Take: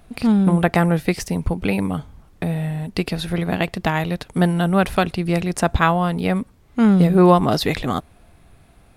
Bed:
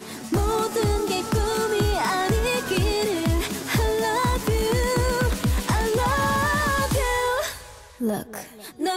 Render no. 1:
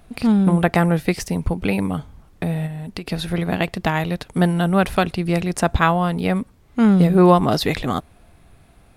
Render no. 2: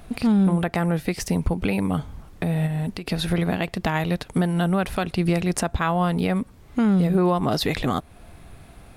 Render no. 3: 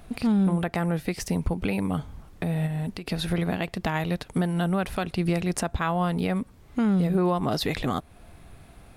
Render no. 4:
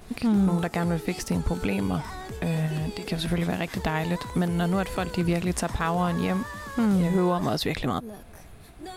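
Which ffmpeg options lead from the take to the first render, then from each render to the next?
-filter_complex "[0:a]asplit=3[a][b][c];[a]afade=t=out:st=2.66:d=0.02[d];[b]acompressor=threshold=-26dB:ratio=6:attack=3.2:release=140:knee=1:detection=peak,afade=t=in:st=2.66:d=0.02,afade=t=out:st=3.08:d=0.02[e];[c]afade=t=in:st=3.08:d=0.02[f];[d][e][f]amix=inputs=3:normalize=0"
-filter_complex "[0:a]asplit=2[a][b];[b]acompressor=threshold=-25dB:ratio=6,volume=-1dB[c];[a][c]amix=inputs=2:normalize=0,alimiter=limit=-11dB:level=0:latency=1:release=334"
-af "volume=-3.5dB"
-filter_complex "[1:a]volume=-15.5dB[a];[0:a][a]amix=inputs=2:normalize=0"

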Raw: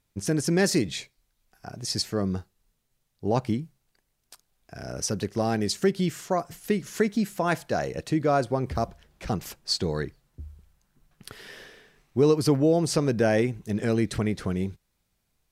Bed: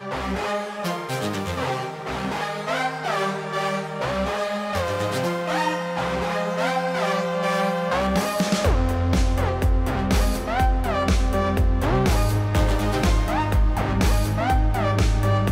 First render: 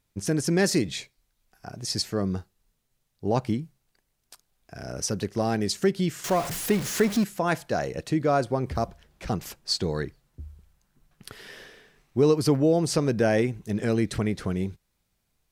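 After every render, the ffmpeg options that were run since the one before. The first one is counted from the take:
-filter_complex "[0:a]asettb=1/sr,asplit=3[a][b][c];[a]atrim=end=6.244[d];[b]atrim=start=6.24:end=7.24,asetpts=PTS-STARTPTS,afade=t=in:d=0.004:c=qsin,afade=t=out:st=0.996:d=0.004:c=qsin,aeval=exprs='val(0)+0.5*0.0398*sgn(val(0))':c=same[e];[c]atrim=start=7.236[f];[d][e]acrossfade=d=0.004:c1=hsin:c2=qsin[g];[g][f]acrossfade=d=0.004:c1=qsin:c2=hsin"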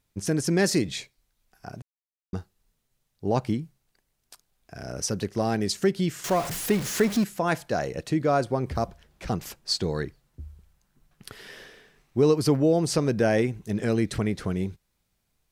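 -filter_complex "[0:a]asplit=3[a][b][c];[a]atrim=end=1.82,asetpts=PTS-STARTPTS,afade=t=out:st=1.816:d=0.004:c=hsin[d];[b]atrim=start=1.82:end=2.33,asetpts=PTS-STARTPTS,volume=0[e];[c]atrim=start=2.33,asetpts=PTS-STARTPTS,afade=t=in:d=0.004:c=hsin[f];[d][e][f]concat=n=3:v=0:a=1"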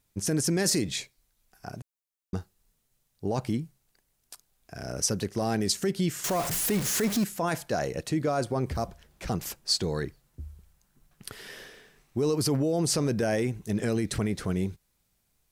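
-filter_complex "[0:a]acrossover=split=6300[a][b];[a]alimiter=limit=-19dB:level=0:latency=1:release=12[c];[b]acontrast=30[d];[c][d]amix=inputs=2:normalize=0"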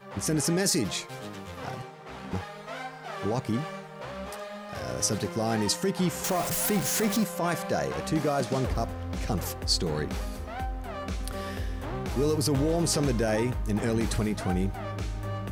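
-filter_complex "[1:a]volume=-13.5dB[a];[0:a][a]amix=inputs=2:normalize=0"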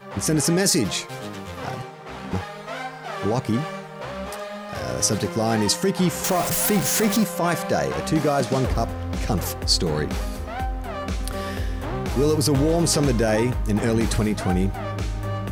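-af "volume=6dB"

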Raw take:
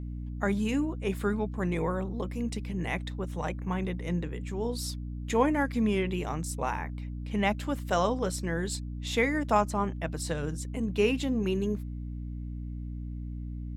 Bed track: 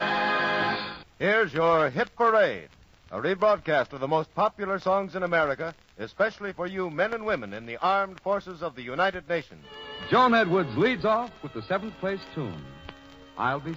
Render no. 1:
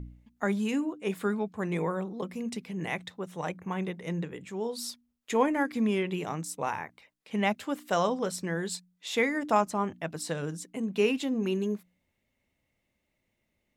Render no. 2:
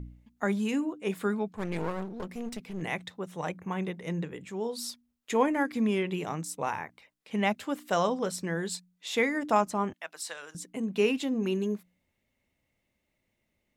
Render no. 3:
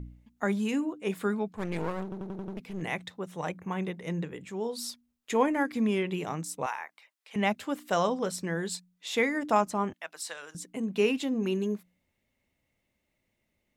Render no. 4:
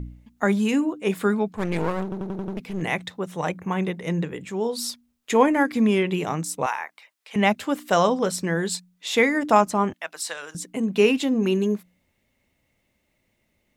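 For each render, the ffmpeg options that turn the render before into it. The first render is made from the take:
-af "bandreject=f=60:t=h:w=4,bandreject=f=120:t=h:w=4,bandreject=f=180:t=h:w=4,bandreject=f=240:t=h:w=4,bandreject=f=300:t=h:w=4"
-filter_complex "[0:a]asplit=3[a][b][c];[a]afade=t=out:st=1.55:d=0.02[d];[b]aeval=exprs='clip(val(0),-1,0.0075)':c=same,afade=t=in:st=1.55:d=0.02,afade=t=out:st=2.81:d=0.02[e];[c]afade=t=in:st=2.81:d=0.02[f];[d][e][f]amix=inputs=3:normalize=0,asettb=1/sr,asplit=3[g][h][i];[g]atrim=end=9.934[j];[h]atrim=start=9.93:end=10.55,asetpts=PTS-STARTPTS,afade=t=in:d=0.004:c=qsin,afade=t=out:st=0.616:d=0.004:c=qsin,highpass=980[k];[i]atrim=start=10.546[l];[j][k]acrossfade=d=0.004:c1=hsin:c2=qsin[m];[m][l]acrossfade=d=0.004:c1=qsin:c2=hsin"
-filter_complex "[0:a]asettb=1/sr,asplit=3[a][b][c];[a]atrim=end=6.664[d];[b]atrim=start=6.66:end=7.36,asetpts=PTS-STARTPTS,afade=t=in:d=0.004:c=qsin,afade=t=out:st=0.696:d=0.004:c=qsin,highpass=790[e];[c]atrim=start=7.356[f];[d][e]acrossfade=d=0.004:c1=hsin:c2=qsin[g];[g][f]acrossfade=d=0.004:c1=qsin:c2=hsin,asplit=7[h][i][j][k][l][m][n];[h]atrim=end=2.122[o];[i]atrim=start=2.028:end=2.122[p];[j]atrim=start=2.028:end=2.122[q];[k]atrim=start=2.028:end=2.122[r];[l]atrim=start=2.028:end=2.122[s];[m]atrim=start=2.028:end=2.122[t];[n]atrim=start=2.568[u];[o][p]acrossfade=d=0.004:c1=hsin:c2=hsin[v];[v][q]acrossfade=d=0.004:c1=hsin:c2=hsin[w];[w][r]acrossfade=d=0.004:c1=hsin:c2=hsin[x];[x][s]acrossfade=d=0.004:c1=hsin:c2=hsin[y];[y][t]acrossfade=d=0.004:c1=hsin:c2=hsin[z];[z][u]acrossfade=d=0.004:c1=hsin:c2=hsin"
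-af "volume=7.5dB"

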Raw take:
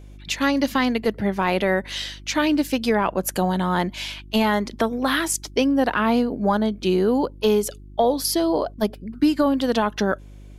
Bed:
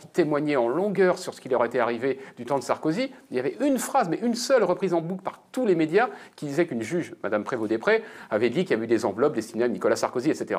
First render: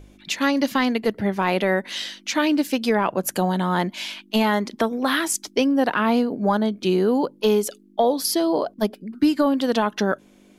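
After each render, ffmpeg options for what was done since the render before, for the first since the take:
-af "bandreject=f=50:t=h:w=4,bandreject=f=100:t=h:w=4,bandreject=f=150:t=h:w=4"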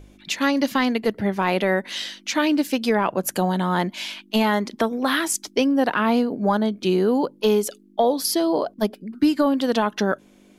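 -af anull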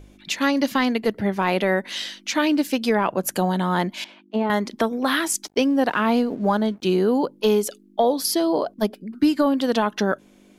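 -filter_complex "[0:a]asettb=1/sr,asplit=3[a][b][c];[a]atrim=end=4.044[d];[b]atrim=start=4.04:end=4.5,asetpts=PTS-STARTPTS,afade=t=in:d=0.004:c=qsin,afade=t=out:st=0.456:d=0.004:c=qsin,bandpass=f=410:t=q:w=0.79[e];[c]atrim=start=4.496[f];[d][e]acrossfade=d=0.004:c1=hsin:c2=qsin[g];[g][f]acrossfade=d=0.004:c1=qsin:c2=hsin,asettb=1/sr,asplit=3[h][i][j];[h]atrim=end=5.474[k];[i]atrim=start=5.47:end=6.94,asetpts=PTS-STARTPTS,afade=t=in:d=0.004:c=qsin,afade=t=out:st=1.466:d=0.004:c=qsin,aeval=exprs='sgn(val(0))*max(abs(val(0))-0.00316,0)':c=same[l];[j]atrim=start=6.936[m];[k][l]acrossfade=d=0.004:c1=hsin:c2=qsin[n];[n][m]acrossfade=d=0.004:c1=qsin:c2=hsin"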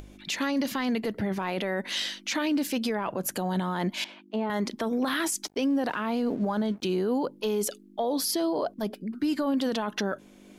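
-af "alimiter=limit=-20dB:level=0:latency=1:release=12,acompressor=mode=upward:threshold=-44dB:ratio=2.5"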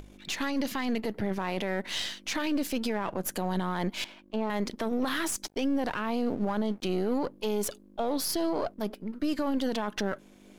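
-af "aeval=exprs='if(lt(val(0),0),0.447*val(0),val(0))':c=same"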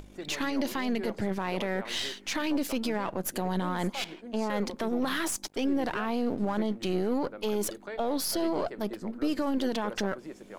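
-filter_complex "[1:a]volume=-19dB[a];[0:a][a]amix=inputs=2:normalize=0"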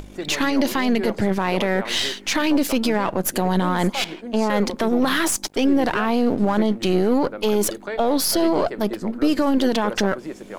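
-af "volume=10dB"

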